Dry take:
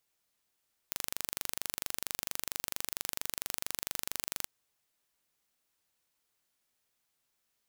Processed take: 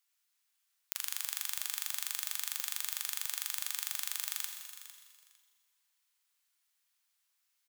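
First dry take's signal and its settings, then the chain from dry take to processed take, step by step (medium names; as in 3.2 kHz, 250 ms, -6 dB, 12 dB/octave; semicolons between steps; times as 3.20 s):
pulse train 24.4 per s, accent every 0, -6.5 dBFS 3.55 s
Bessel high-pass 1.3 kHz, order 6; feedback delay 454 ms, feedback 18%, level -14 dB; Schroeder reverb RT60 1.7 s, combs from 32 ms, DRR 4.5 dB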